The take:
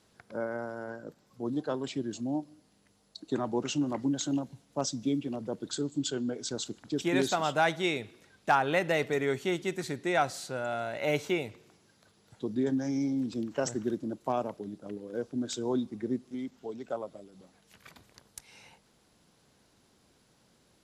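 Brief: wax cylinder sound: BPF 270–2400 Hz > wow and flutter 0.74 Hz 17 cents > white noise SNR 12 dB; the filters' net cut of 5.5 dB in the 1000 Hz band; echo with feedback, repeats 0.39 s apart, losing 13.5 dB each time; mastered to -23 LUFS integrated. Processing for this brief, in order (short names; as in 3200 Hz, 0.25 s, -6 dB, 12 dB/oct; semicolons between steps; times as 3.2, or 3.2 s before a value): BPF 270–2400 Hz; bell 1000 Hz -8 dB; feedback echo 0.39 s, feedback 21%, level -13.5 dB; wow and flutter 0.74 Hz 17 cents; white noise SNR 12 dB; gain +13.5 dB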